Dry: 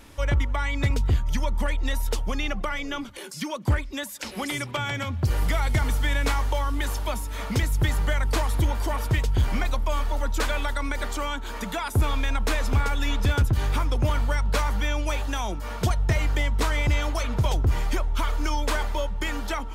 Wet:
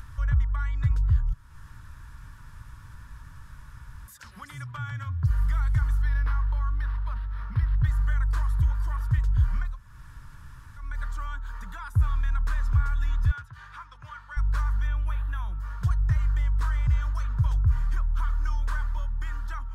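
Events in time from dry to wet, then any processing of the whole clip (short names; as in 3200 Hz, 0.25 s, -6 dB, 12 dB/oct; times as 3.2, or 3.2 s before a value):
1.33–4.08 room tone
6.02–7.85 decimation joined by straight lines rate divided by 6×
9.69–10.87 room tone, crossfade 0.24 s
13.31–14.37 band-pass 2300 Hz, Q 0.59
14.87–15.58 band shelf 6100 Hz -11.5 dB 1.1 oct
whole clip: band shelf 1300 Hz +15.5 dB 1.1 oct; upward compressor, threshold -24 dBFS; EQ curve 130 Hz 0 dB, 230 Hz -20 dB, 350 Hz -26 dB, 4800 Hz -17 dB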